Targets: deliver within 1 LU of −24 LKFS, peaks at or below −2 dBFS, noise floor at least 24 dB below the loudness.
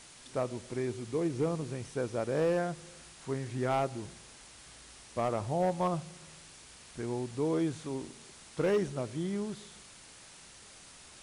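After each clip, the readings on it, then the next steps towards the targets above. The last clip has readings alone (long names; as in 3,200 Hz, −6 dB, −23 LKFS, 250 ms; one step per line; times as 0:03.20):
share of clipped samples 0.6%; peaks flattened at −23.0 dBFS; background noise floor −54 dBFS; target noise floor −58 dBFS; integrated loudness −33.5 LKFS; sample peak −23.0 dBFS; target loudness −24.0 LKFS
→ clipped peaks rebuilt −23 dBFS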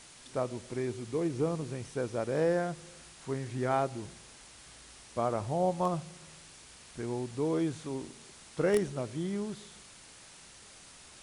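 share of clipped samples 0.0%; background noise floor −54 dBFS; target noise floor −58 dBFS
→ broadband denoise 6 dB, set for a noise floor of −54 dBFS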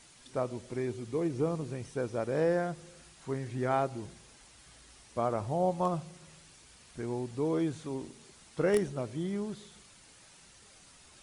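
background noise floor −58 dBFS; integrated loudness −33.5 LKFS; sample peak −14.0 dBFS; target loudness −24.0 LKFS
→ level +9.5 dB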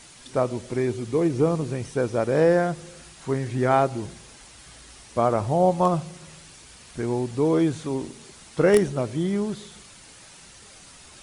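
integrated loudness −24.0 LKFS; sample peak −4.5 dBFS; background noise floor −48 dBFS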